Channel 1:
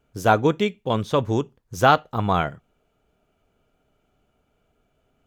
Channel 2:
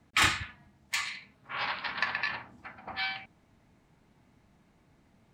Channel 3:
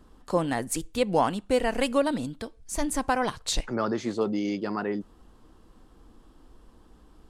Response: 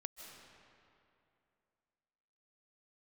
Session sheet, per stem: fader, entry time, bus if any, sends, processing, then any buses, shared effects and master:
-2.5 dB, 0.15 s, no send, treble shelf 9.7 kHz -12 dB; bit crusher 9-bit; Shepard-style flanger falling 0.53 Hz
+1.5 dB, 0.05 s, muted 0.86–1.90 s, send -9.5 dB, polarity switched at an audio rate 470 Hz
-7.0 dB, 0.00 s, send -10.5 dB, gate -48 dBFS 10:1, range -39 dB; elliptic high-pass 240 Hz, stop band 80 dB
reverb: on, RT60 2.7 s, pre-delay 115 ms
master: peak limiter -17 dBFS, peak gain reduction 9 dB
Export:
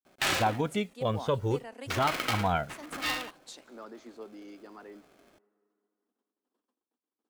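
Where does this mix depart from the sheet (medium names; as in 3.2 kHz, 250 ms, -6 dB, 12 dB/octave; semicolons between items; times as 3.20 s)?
stem 2: send off; stem 3 -7.0 dB -> -18.5 dB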